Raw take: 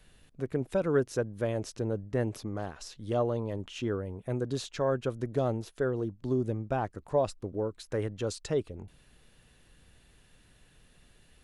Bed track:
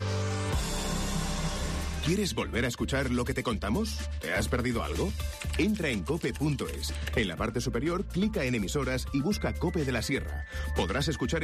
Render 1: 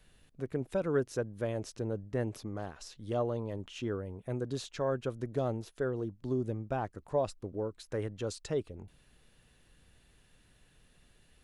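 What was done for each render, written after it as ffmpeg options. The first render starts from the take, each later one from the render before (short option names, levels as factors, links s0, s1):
-af "volume=0.668"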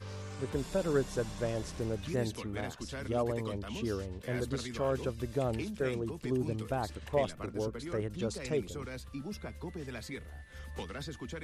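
-filter_complex "[1:a]volume=0.237[s0];[0:a][s0]amix=inputs=2:normalize=0"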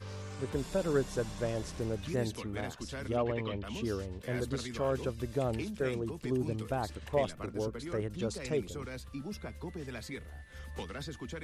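-filter_complex "[0:a]asplit=3[s0][s1][s2];[s0]afade=t=out:st=3.16:d=0.02[s3];[s1]lowpass=f=2800:t=q:w=2.4,afade=t=in:st=3.16:d=0.02,afade=t=out:st=3.63:d=0.02[s4];[s2]afade=t=in:st=3.63:d=0.02[s5];[s3][s4][s5]amix=inputs=3:normalize=0"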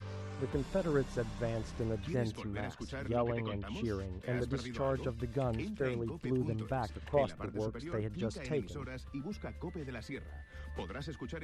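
-af "lowpass=f=2700:p=1,adynamicequalizer=threshold=0.00501:dfrequency=450:dqfactor=1.1:tfrequency=450:tqfactor=1.1:attack=5:release=100:ratio=0.375:range=2:mode=cutabove:tftype=bell"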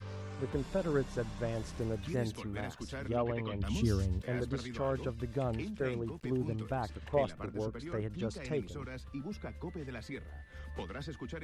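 -filter_complex "[0:a]asettb=1/sr,asplit=3[s0][s1][s2];[s0]atrim=end=1.524[s3];[s1]atrim=start=1.52:end=2.98,asetpts=PTS-STARTPTS,afade=t=in:d=0.004:c=qsin,afade=t=out:st=1.456:d=0.004:c=qsin,highshelf=f=8600:g=9.5[s4];[s2]atrim=start=2.976[s5];[s3][s4]acrossfade=d=0.004:c1=hsin:c2=qsin[s6];[s6][s5]acrossfade=d=0.004:c1=qsin:c2=hsin,asettb=1/sr,asplit=3[s7][s8][s9];[s7]atrim=end=3.604[s10];[s8]atrim=start=3.6:end=4.23,asetpts=PTS-STARTPTS,afade=t=in:d=0.004:c=qsin,afade=t=out:st=0.626:d=0.004:c=qsin,bass=f=250:g=10,treble=f=4000:g=14[s11];[s9]atrim=start=4.226[s12];[s10][s11]acrossfade=d=0.004:c1=hsin:c2=qsin[s13];[s13][s12]acrossfade=d=0.004:c1=qsin:c2=hsin,asettb=1/sr,asplit=3[s14][s15][s16];[s14]atrim=end=6.044[s17];[s15]atrim=start=6.04:end=6.53,asetpts=PTS-STARTPTS,afade=t=in:d=0.004:c=qsin,afade=t=out:st=0.486:d=0.004:c=qsin,aeval=exprs='sgn(val(0))*max(abs(val(0))-0.001,0)':c=same[s18];[s16]atrim=start=6.526[s19];[s17][s18]acrossfade=d=0.004:c1=hsin:c2=qsin[s20];[s20][s19]acrossfade=d=0.004:c1=qsin:c2=hsin"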